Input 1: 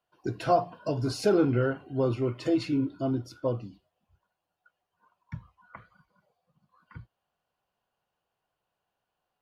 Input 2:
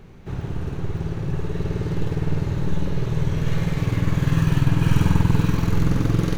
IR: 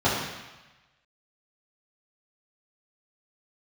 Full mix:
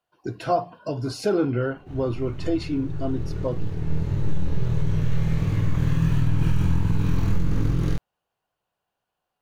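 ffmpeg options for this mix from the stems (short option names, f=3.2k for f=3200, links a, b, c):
-filter_complex "[0:a]volume=1dB,asplit=2[a][b];[1:a]lowshelf=f=180:g=7,flanger=delay=19:depth=7.6:speed=1.5,adelay=1600,volume=-2.5dB[c];[b]apad=whole_len=351849[d];[c][d]sidechaincompress=threshold=-28dB:ratio=8:attack=32:release=1360[e];[a][e]amix=inputs=2:normalize=0,alimiter=limit=-11.5dB:level=0:latency=1:release=88"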